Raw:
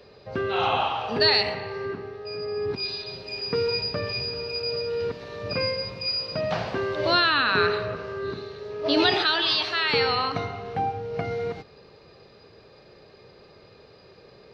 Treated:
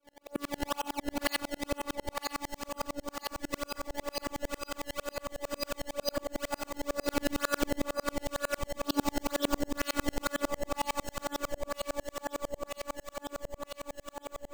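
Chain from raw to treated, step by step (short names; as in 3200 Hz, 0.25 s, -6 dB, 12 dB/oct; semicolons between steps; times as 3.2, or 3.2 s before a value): HPF 110 Hz 24 dB/oct; high shelf 5200 Hz -9 dB; notches 50/100/150/200/250/300/350/400 Hz; 2.51–3.54 low shelf 380 Hz -9.5 dB; in parallel at 0 dB: compressor, threshold -34 dBFS, peak gain reduction 15.5 dB; on the sum: decimation with a swept rate 21×, swing 160% 2.1 Hz; robotiser 287 Hz; on a send: echo with dull and thin repeats by turns 0.481 s, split 1200 Hz, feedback 84%, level -2.5 dB; on the sum: dB-ramp tremolo swelling 11 Hz, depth 39 dB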